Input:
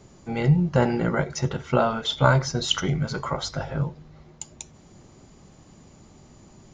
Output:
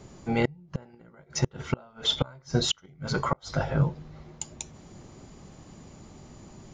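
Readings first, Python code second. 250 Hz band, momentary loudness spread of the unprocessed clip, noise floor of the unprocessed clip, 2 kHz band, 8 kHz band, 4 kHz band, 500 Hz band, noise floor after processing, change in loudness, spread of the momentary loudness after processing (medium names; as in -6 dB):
-6.0 dB, 19 LU, -52 dBFS, -7.0 dB, -1.5 dB, -1.5 dB, -7.0 dB, -57 dBFS, -5.5 dB, 22 LU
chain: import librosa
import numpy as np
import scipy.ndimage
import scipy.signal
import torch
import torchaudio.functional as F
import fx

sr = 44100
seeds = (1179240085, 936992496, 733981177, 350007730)

y = fx.high_shelf(x, sr, hz=5200.0, db=-2.5)
y = fx.gate_flip(y, sr, shuts_db=-15.0, range_db=-32)
y = F.gain(torch.from_numpy(y), 2.5).numpy()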